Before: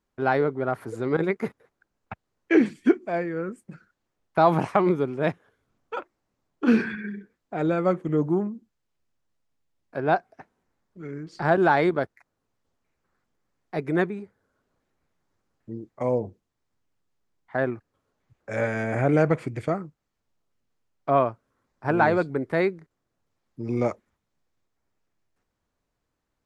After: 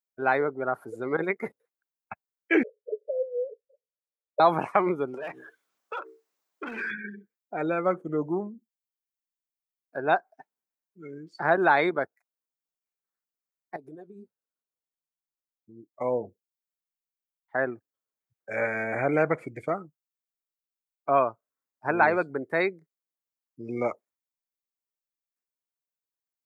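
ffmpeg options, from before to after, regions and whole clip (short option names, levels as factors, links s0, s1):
-filter_complex "[0:a]asettb=1/sr,asplit=3[s0][s1][s2];[s0]atrim=end=2.634[s3];[s1]atrim=start=2.63:end=4.4,asetpts=PTS-STARTPTS,afade=t=in:d=0.004:c=qsin,afade=t=out:st=1.766:d=0.004:c=qsin,asuperpass=centerf=510:order=20:qfactor=2.5,acontrast=52[s4];[s2]atrim=start=4.396[s5];[s3][s4]acrossfade=d=0.004:c1=hsin:c2=qsin[s6];[s6][s5]acrossfade=d=0.004:c1=qsin:c2=hsin,asettb=1/sr,asplit=3[s7][s8][s9];[s7]atrim=end=5.144[s10];[s8]atrim=start=5.14:end=6.91,asetpts=PTS-STARTPTS,afade=t=in:d=0.004:c=qsin,afade=t=out:st=1.766:d=0.004:c=qsin,asplit=2[s11][s12];[s12]highpass=f=720:p=1,volume=20,asoftclip=type=tanh:threshold=0.376[s13];[s11][s13]amix=inputs=2:normalize=0,lowpass=f=4300:p=1,volume=0.501,bandreject=f=64.07:t=h:w=4,bandreject=f=128.14:t=h:w=4,bandreject=f=192.21:t=h:w=4,bandreject=f=256.28:t=h:w=4,bandreject=f=320.35:t=h:w=4,bandreject=f=384.42:t=h:w=4,bandreject=f=448.49:t=h:w=4,acompressor=threshold=0.0316:ratio=16:attack=3.2:release=140:knee=1:detection=peak[s14];[s9]atrim=start=6.906[s15];[s10][s14]acrossfade=d=0.004:c1=hsin:c2=qsin[s16];[s16][s15]acrossfade=d=0.004:c1=qsin:c2=hsin,asettb=1/sr,asplit=3[s17][s18][s19];[s17]atrim=end=13.764[s20];[s18]atrim=start=13.76:end=15.94,asetpts=PTS-STARTPTS,afade=t=in:d=0.004:c=qsin,afade=t=out:st=2.176:d=0.004:c=qsin,equalizer=f=2100:w=2.2:g=-13.5,acompressor=threshold=0.0282:ratio=12:attack=3.2:release=140:knee=1:detection=peak,flanger=delay=2.6:depth=8.4:regen=64:speed=1.3:shape=triangular[s21];[s19]atrim=start=15.936[s22];[s20][s21]acrossfade=d=0.004:c1=hsin:c2=qsin[s23];[s23][s22]acrossfade=d=0.004:c1=qsin:c2=hsin,afftdn=nr=22:nf=-38,aemphasis=mode=production:type=riaa"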